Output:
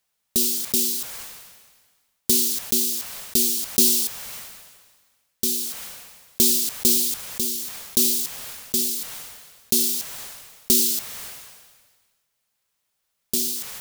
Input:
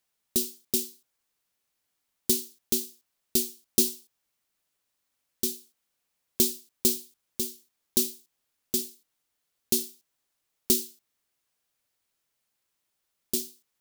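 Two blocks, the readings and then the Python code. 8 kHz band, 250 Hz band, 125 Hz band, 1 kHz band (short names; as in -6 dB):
+8.5 dB, +4.5 dB, +4.0 dB, n/a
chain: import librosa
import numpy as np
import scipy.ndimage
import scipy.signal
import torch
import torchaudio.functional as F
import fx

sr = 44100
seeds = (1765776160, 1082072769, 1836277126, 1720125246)

y = fx.peak_eq(x, sr, hz=320.0, db=-12.0, octaves=0.32)
y = fx.sustainer(y, sr, db_per_s=39.0)
y = F.gain(torch.from_numpy(y), 4.0).numpy()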